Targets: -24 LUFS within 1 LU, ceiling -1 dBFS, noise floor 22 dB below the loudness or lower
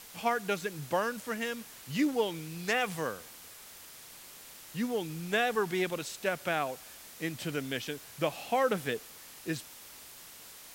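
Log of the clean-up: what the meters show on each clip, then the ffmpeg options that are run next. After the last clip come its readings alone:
noise floor -51 dBFS; noise floor target -55 dBFS; loudness -33.0 LUFS; peak -15.0 dBFS; loudness target -24.0 LUFS
-> -af "afftdn=nr=6:nf=-51"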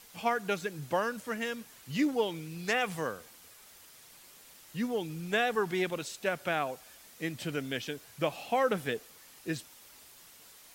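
noise floor -55 dBFS; loudness -33.0 LUFS; peak -15.0 dBFS; loudness target -24.0 LUFS
-> -af "volume=9dB"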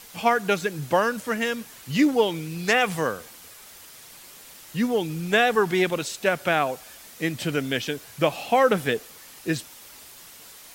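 loudness -24.0 LUFS; peak -6.0 dBFS; noise floor -46 dBFS

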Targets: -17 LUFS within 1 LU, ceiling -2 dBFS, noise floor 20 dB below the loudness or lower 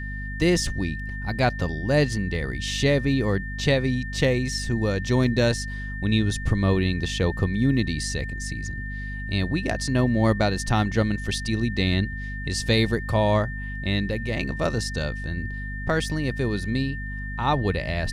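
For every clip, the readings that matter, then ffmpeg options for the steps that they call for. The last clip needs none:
hum 50 Hz; harmonics up to 250 Hz; hum level -30 dBFS; steady tone 1800 Hz; tone level -35 dBFS; loudness -25.0 LUFS; peak -6.5 dBFS; loudness target -17.0 LUFS
-> -af "bandreject=f=50:t=h:w=4,bandreject=f=100:t=h:w=4,bandreject=f=150:t=h:w=4,bandreject=f=200:t=h:w=4,bandreject=f=250:t=h:w=4"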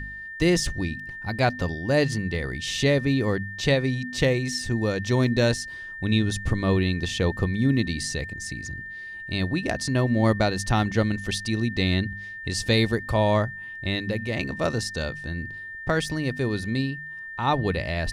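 hum none; steady tone 1800 Hz; tone level -35 dBFS
-> -af "bandreject=f=1.8k:w=30"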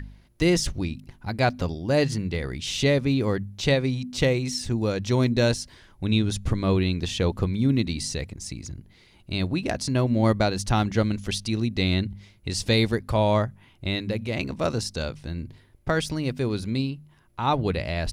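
steady tone none; loudness -25.5 LUFS; peak -7.0 dBFS; loudness target -17.0 LUFS
-> -af "volume=8.5dB,alimiter=limit=-2dB:level=0:latency=1"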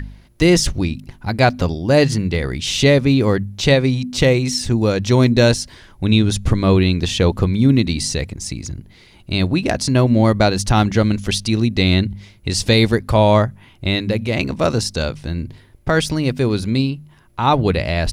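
loudness -17.0 LUFS; peak -2.0 dBFS; noise floor -48 dBFS

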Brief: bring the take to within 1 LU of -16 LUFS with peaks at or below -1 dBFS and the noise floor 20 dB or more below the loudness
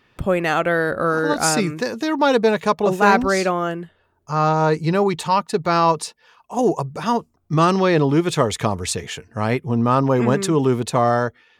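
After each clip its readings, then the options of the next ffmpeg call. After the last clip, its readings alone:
loudness -19.5 LUFS; peak -3.0 dBFS; loudness target -16.0 LUFS
-> -af "volume=3.5dB,alimiter=limit=-1dB:level=0:latency=1"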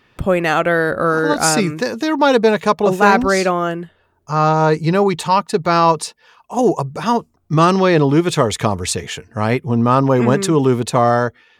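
loudness -16.0 LUFS; peak -1.0 dBFS; noise floor -59 dBFS

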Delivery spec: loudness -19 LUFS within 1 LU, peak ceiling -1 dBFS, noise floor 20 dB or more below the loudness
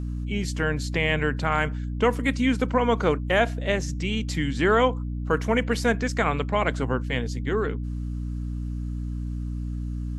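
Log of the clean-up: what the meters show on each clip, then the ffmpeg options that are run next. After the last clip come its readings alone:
hum 60 Hz; harmonics up to 300 Hz; hum level -27 dBFS; loudness -25.5 LUFS; peak -8.0 dBFS; loudness target -19.0 LUFS
-> -af "bandreject=f=60:t=h:w=6,bandreject=f=120:t=h:w=6,bandreject=f=180:t=h:w=6,bandreject=f=240:t=h:w=6,bandreject=f=300:t=h:w=6"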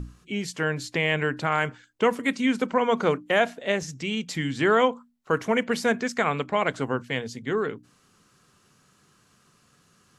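hum none; loudness -25.5 LUFS; peak -8.0 dBFS; loudness target -19.0 LUFS
-> -af "volume=6.5dB"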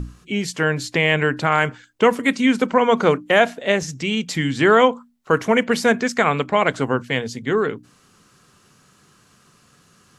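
loudness -19.0 LUFS; peak -1.5 dBFS; noise floor -56 dBFS

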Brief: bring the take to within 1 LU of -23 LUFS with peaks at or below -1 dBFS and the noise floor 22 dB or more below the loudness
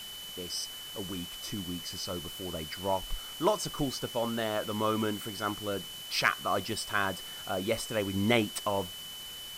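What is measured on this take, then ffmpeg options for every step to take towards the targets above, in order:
steady tone 3000 Hz; tone level -42 dBFS; noise floor -43 dBFS; noise floor target -55 dBFS; loudness -32.5 LUFS; peak -11.0 dBFS; loudness target -23.0 LUFS
-> -af "bandreject=f=3k:w=30"
-af "afftdn=nr=12:nf=-43"
-af "volume=9.5dB"

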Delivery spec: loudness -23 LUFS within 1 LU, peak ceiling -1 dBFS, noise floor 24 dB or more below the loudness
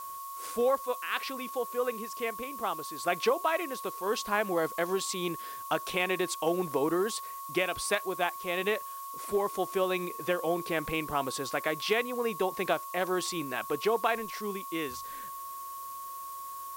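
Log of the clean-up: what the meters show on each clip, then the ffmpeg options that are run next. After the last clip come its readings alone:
steady tone 1100 Hz; tone level -39 dBFS; noise floor -41 dBFS; noise floor target -56 dBFS; loudness -31.5 LUFS; peak -13.0 dBFS; loudness target -23.0 LUFS
-> -af "bandreject=f=1.1k:w=30"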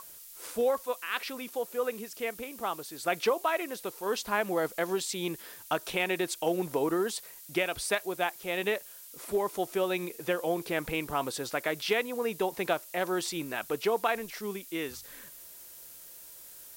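steady tone none; noise floor -49 dBFS; noise floor target -56 dBFS
-> -af "afftdn=nr=7:nf=-49"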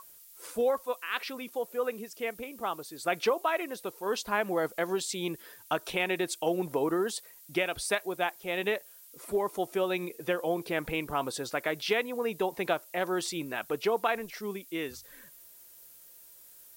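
noise floor -54 dBFS; noise floor target -56 dBFS
-> -af "afftdn=nr=6:nf=-54"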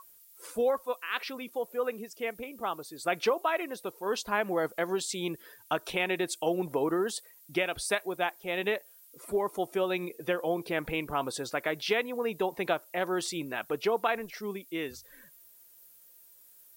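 noise floor -57 dBFS; loudness -32.0 LUFS; peak -13.0 dBFS; loudness target -23.0 LUFS
-> -af "volume=9dB"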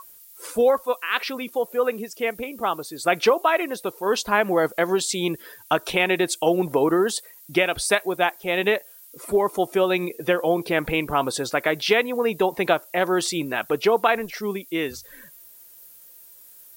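loudness -23.0 LUFS; peak -4.0 dBFS; noise floor -48 dBFS

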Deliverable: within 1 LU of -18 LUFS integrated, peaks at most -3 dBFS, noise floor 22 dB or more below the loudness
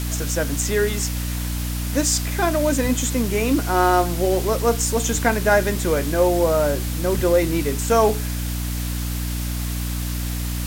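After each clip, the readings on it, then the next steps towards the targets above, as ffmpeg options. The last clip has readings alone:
hum 60 Hz; harmonics up to 300 Hz; hum level -23 dBFS; noise floor -26 dBFS; noise floor target -43 dBFS; loudness -21.0 LUFS; peak -4.0 dBFS; loudness target -18.0 LUFS
-> -af "bandreject=f=60:t=h:w=4,bandreject=f=120:t=h:w=4,bandreject=f=180:t=h:w=4,bandreject=f=240:t=h:w=4,bandreject=f=300:t=h:w=4"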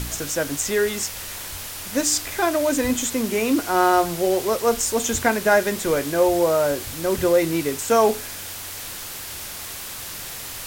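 hum none; noise floor -34 dBFS; noise floor target -44 dBFS
-> -af "afftdn=nr=10:nf=-34"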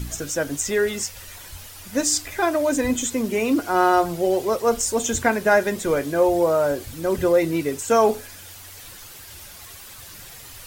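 noise floor -42 dBFS; noise floor target -44 dBFS
-> -af "afftdn=nr=6:nf=-42"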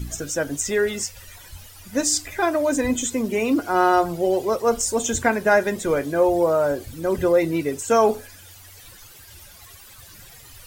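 noise floor -46 dBFS; loudness -21.5 LUFS; peak -5.5 dBFS; loudness target -18.0 LUFS
-> -af "volume=3.5dB,alimiter=limit=-3dB:level=0:latency=1"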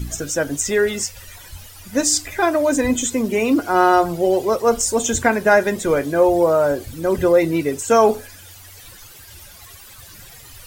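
loudness -18.0 LUFS; peak -3.0 dBFS; noise floor -42 dBFS

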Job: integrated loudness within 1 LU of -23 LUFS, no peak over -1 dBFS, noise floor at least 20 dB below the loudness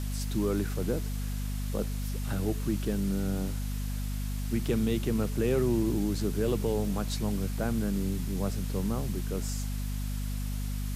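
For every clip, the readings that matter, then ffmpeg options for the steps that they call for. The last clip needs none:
hum 50 Hz; harmonics up to 250 Hz; hum level -30 dBFS; noise floor -33 dBFS; noise floor target -52 dBFS; loudness -31.5 LUFS; peak -15.5 dBFS; loudness target -23.0 LUFS
-> -af "bandreject=f=50:t=h:w=4,bandreject=f=100:t=h:w=4,bandreject=f=150:t=h:w=4,bandreject=f=200:t=h:w=4,bandreject=f=250:t=h:w=4"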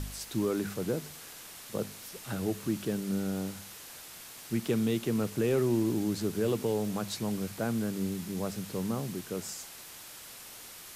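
hum none; noise floor -48 dBFS; noise floor target -53 dBFS
-> -af "afftdn=nr=6:nf=-48"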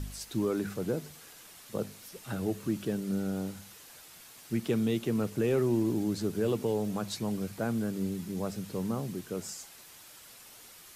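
noise floor -52 dBFS; noise floor target -53 dBFS
-> -af "afftdn=nr=6:nf=-52"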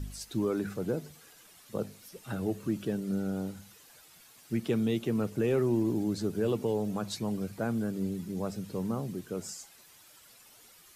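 noise floor -57 dBFS; loudness -32.5 LUFS; peak -17.5 dBFS; loudness target -23.0 LUFS
-> -af "volume=9.5dB"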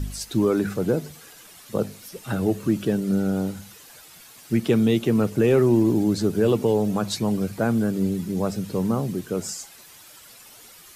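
loudness -23.0 LUFS; peak -8.0 dBFS; noise floor -48 dBFS

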